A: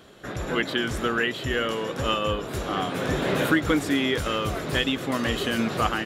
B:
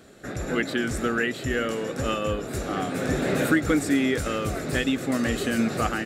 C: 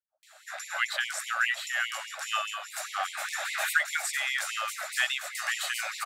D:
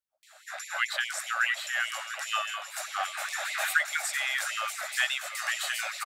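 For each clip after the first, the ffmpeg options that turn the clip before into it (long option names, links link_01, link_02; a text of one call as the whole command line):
ffmpeg -i in.wav -af "equalizer=frequency=250:width_type=o:width=0.33:gain=4,equalizer=frequency=1000:width_type=o:width=0.33:gain=-10,equalizer=frequency=3150:width_type=o:width=0.33:gain=-9,equalizer=frequency=8000:width_type=o:width=0.33:gain=7" out.wav
ffmpeg -i in.wav -filter_complex "[0:a]acrossover=split=440[link_01][link_02];[link_02]adelay=230[link_03];[link_01][link_03]amix=inputs=2:normalize=0,afftfilt=real='re*gte(b*sr/1024,550*pow(2000/550,0.5+0.5*sin(2*PI*4.9*pts/sr)))':imag='im*gte(b*sr/1024,550*pow(2000/550,0.5+0.5*sin(2*PI*4.9*pts/sr)))':win_size=1024:overlap=0.75,volume=2dB" out.wav
ffmpeg -i in.wav -af "aecho=1:1:701:0.211" out.wav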